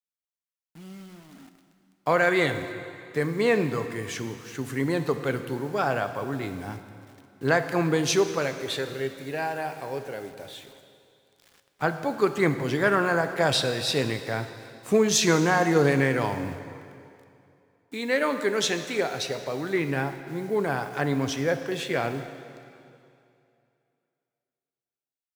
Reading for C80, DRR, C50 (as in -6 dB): 10.5 dB, 8.5 dB, 10.0 dB